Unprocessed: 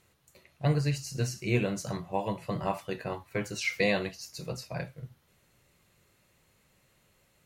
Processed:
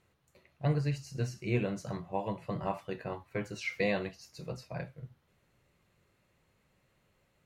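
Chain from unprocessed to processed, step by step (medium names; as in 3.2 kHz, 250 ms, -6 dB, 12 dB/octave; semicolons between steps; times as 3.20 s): treble shelf 4.2 kHz -11 dB; trim -3 dB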